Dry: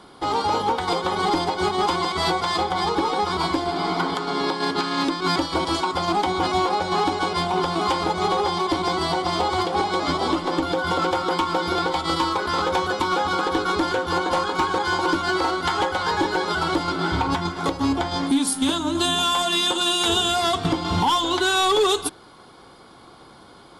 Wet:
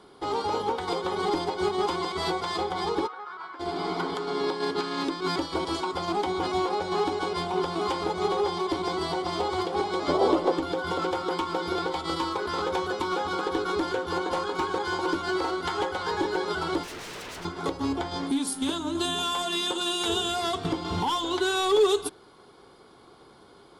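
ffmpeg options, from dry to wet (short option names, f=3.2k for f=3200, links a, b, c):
-filter_complex "[0:a]asplit=3[a][b][c];[a]afade=t=out:st=3.06:d=0.02[d];[b]bandpass=f=1.4k:t=q:w=3.5,afade=t=in:st=3.06:d=0.02,afade=t=out:st=3.59:d=0.02[e];[c]afade=t=in:st=3.59:d=0.02[f];[d][e][f]amix=inputs=3:normalize=0,asettb=1/sr,asplit=3[g][h][i];[g]atrim=end=10.084[j];[h]atrim=start=10.08:end=10.52,asetpts=PTS-STARTPTS,afade=t=in:d=0.004:c=qsin,afade=t=out:st=0.436:d=0.004:c=qsin,equalizer=f=560:t=o:w=1.2:g=12[k];[i]atrim=start=10.516[l];[j][k]acrossfade=d=0.004:c1=hsin:c2=qsin[m];[m][l]acrossfade=d=0.004:c1=qsin:c2=hsin,asettb=1/sr,asplit=3[n][o][p];[n]atrim=end=16.834[q];[o]atrim=start=16.83:end=17.45,asetpts=PTS-STARTPTS,afade=t=in:d=0.004:c=qsin,afade=t=out:st=0.616:d=0.004:c=qsin,aeval=exprs='0.0422*(abs(mod(val(0)/0.0422+3,4)-2)-1)':c=same[r];[p]atrim=start=17.446[s];[q][r]acrossfade=d=0.004:c1=hsin:c2=qsin[t];[t][s]acrossfade=d=0.004:c1=qsin:c2=hsin,equalizer=f=410:w=3.8:g=8,volume=-7.5dB"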